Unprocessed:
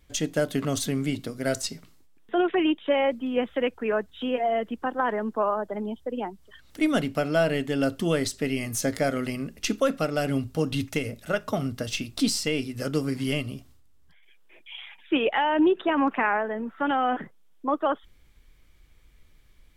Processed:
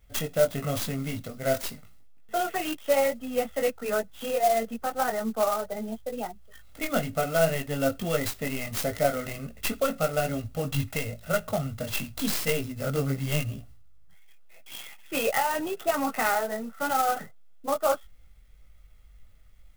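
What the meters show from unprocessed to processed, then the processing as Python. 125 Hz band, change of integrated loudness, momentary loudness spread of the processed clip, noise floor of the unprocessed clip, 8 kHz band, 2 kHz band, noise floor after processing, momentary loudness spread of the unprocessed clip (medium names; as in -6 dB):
0.0 dB, -1.5 dB, 9 LU, -55 dBFS, 0.0 dB, -1.5 dB, -51 dBFS, 9 LU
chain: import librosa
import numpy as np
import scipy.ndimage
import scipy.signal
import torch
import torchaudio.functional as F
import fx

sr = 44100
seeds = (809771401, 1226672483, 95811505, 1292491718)

y = fx.chorus_voices(x, sr, voices=4, hz=0.87, base_ms=20, depth_ms=2.4, mix_pct=40)
y = y + 0.72 * np.pad(y, (int(1.5 * sr / 1000.0), 0))[:len(y)]
y = fx.clock_jitter(y, sr, seeds[0], jitter_ms=0.044)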